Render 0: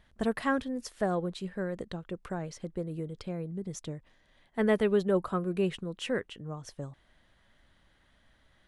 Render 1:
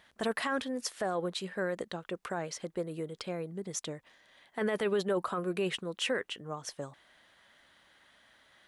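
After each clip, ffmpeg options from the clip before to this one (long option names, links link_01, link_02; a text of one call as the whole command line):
ffmpeg -i in.wav -af "highpass=frequency=690:poles=1,alimiter=level_in=6dB:limit=-24dB:level=0:latency=1:release=12,volume=-6dB,volume=7dB" out.wav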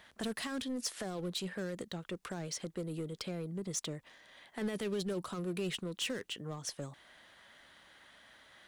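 ffmpeg -i in.wav -filter_complex "[0:a]asplit=2[link_01][link_02];[link_02]aeval=exprs='0.0133*(abs(mod(val(0)/0.0133+3,4)-2)-1)':channel_layout=same,volume=-10dB[link_03];[link_01][link_03]amix=inputs=2:normalize=0,acrossover=split=320|3000[link_04][link_05][link_06];[link_05]acompressor=threshold=-47dB:ratio=3[link_07];[link_04][link_07][link_06]amix=inputs=3:normalize=0,asoftclip=type=tanh:threshold=-28dB,volume=1dB" out.wav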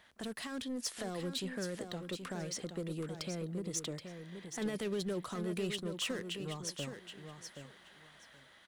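ffmpeg -i in.wav -af "dynaudnorm=framelen=240:gausssize=5:maxgain=4dB,aecho=1:1:775|1550|2325:0.398|0.0756|0.0144,volume=-4.5dB" out.wav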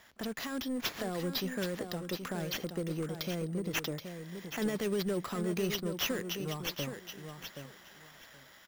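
ffmpeg -i in.wav -af "acrusher=samples=5:mix=1:aa=0.000001,volume=4dB" out.wav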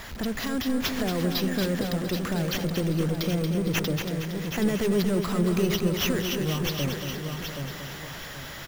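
ffmpeg -i in.wav -af "aeval=exprs='val(0)+0.5*0.00841*sgn(val(0))':channel_layout=same,lowshelf=frequency=140:gain=12,aecho=1:1:231|462|693|924|1155|1386:0.447|0.237|0.125|0.0665|0.0352|0.0187,volume=4dB" out.wav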